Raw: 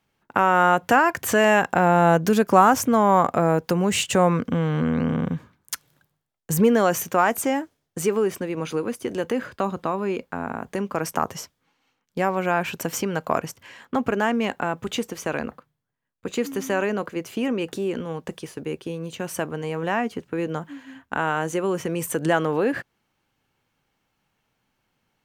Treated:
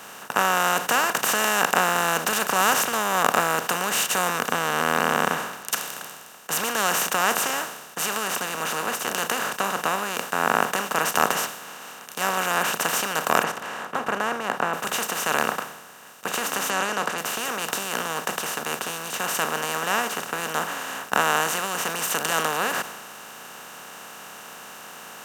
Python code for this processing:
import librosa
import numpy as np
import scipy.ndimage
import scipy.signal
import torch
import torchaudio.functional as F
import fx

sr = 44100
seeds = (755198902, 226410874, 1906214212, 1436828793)

y = fx.lowpass(x, sr, hz=fx.line((13.42, 1700.0), (14.73, 1000.0)), slope=12, at=(13.42, 14.73), fade=0.02)
y = fx.lowpass(y, sr, hz=6700.0, slope=24, at=(16.7, 17.18))
y = fx.bin_compress(y, sr, power=0.2)
y = fx.tilt_shelf(y, sr, db=-7.5, hz=850.0)
y = fx.band_widen(y, sr, depth_pct=100)
y = y * 10.0 ** (-13.0 / 20.0)